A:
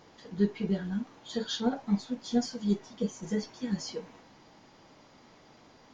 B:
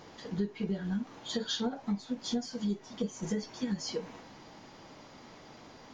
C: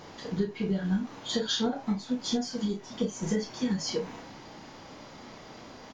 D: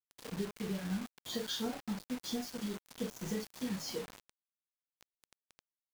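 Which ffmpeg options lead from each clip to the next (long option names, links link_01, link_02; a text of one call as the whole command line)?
ffmpeg -i in.wav -af "acompressor=threshold=-35dB:ratio=6,volume=5dB" out.wav
ffmpeg -i in.wav -filter_complex "[0:a]asplit=2[link_01][link_02];[link_02]adelay=32,volume=-5.5dB[link_03];[link_01][link_03]amix=inputs=2:normalize=0,volume=4dB" out.wav
ffmpeg -i in.wav -af "acrusher=bits=5:mix=0:aa=0.000001,volume=-9dB" out.wav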